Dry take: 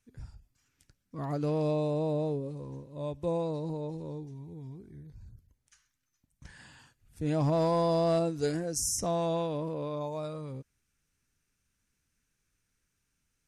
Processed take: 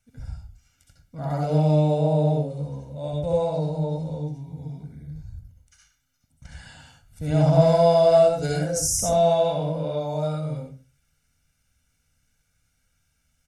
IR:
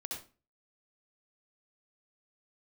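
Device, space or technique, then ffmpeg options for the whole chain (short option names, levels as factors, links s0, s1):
microphone above a desk: -filter_complex "[0:a]aecho=1:1:1.4:0.82[s0];[1:a]atrim=start_sample=2205[s1];[s0][s1]afir=irnorm=-1:irlink=0,volume=2.11"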